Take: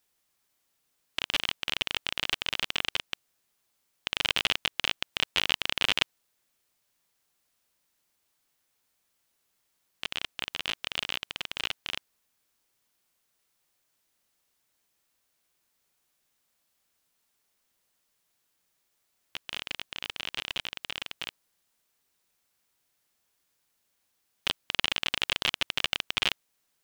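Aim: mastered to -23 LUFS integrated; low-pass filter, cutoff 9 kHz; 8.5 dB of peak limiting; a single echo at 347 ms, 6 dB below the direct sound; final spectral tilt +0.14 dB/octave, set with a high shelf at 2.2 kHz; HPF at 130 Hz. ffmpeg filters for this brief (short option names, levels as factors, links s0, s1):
-af "highpass=130,lowpass=9000,highshelf=f=2200:g=3.5,alimiter=limit=0.355:level=0:latency=1,aecho=1:1:347:0.501,volume=2.11"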